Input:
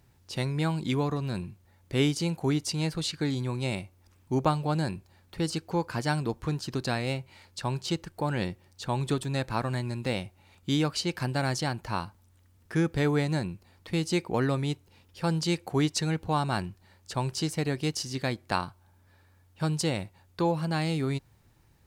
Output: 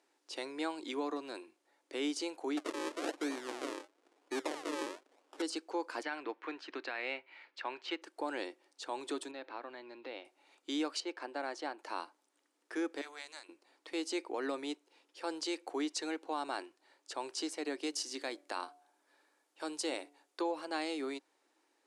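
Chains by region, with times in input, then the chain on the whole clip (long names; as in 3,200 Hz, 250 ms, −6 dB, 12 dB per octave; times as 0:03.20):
0:02.57–0:05.42: high-shelf EQ 4,100 Hz +9.5 dB + sample-and-hold swept by an LFO 42× 1 Hz
0:06.03–0:08.02: low-pass with resonance 2,200 Hz, resonance Q 1.7 + tilt shelving filter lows −4.5 dB, about 1,200 Hz
0:09.31–0:10.25: low-pass filter 4,000 Hz 24 dB per octave + downward compressor 3 to 1, threshold −35 dBFS
0:11.00–0:11.79: low-pass filter 1,600 Hz 6 dB per octave + parametric band 87 Hz −13 dB 2.3 octaves
0:13.01–0:13.49: guitar amp tone stack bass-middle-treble 10-0-10 + saturating transformer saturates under 1,200 Hz
0:17.86–0:20.41: high-shelf EQ 7,800 Hz +7 dB + hum removal 144.3 Hz, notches 5
whole clip: low-pass filter 10,000 Hz 24 dB per octave; brickwall limiter −20.5 dBFS; elliptic high-pass filter 290 Hz, stop band 40 dB; level −4.5 dB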